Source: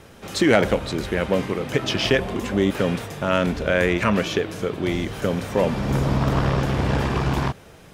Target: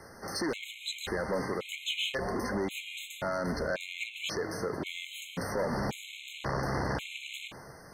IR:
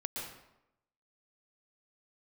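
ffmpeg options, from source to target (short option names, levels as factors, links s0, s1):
-filter_complex "[0:a]asoftclip=type=tanh:threshold=0.126,lowshelf=f=420:g=-9,alimiter=limit=0.0668:level=0:latency=1:release=73,asplit=2[s0][s1];[1:a]atrim=start_sample=2205[s2];[s1][s2]afir=irnorm=-1:irlink=0,volume=0.119[s3];[s0][s3]amix=inputs=2:normalize=0,acrossover=split=170[s4][s5];[s4]acompressor=threshold=0.02:ratio=8[s6];[s6][s5]amix=inputs=2:normalize=0,afftfilt=real='re*gt(sin(2*PI*0.93*pts/sr)*(1-2*mod(floor(b*sr/1024/2100),2)),0)':imag='im*gt(sin(2*PI*0.93*pts/sr)*(1-2*mod(floor(b*sr/1024/2100),2)),0)':win_size=1024:overlap=0.75"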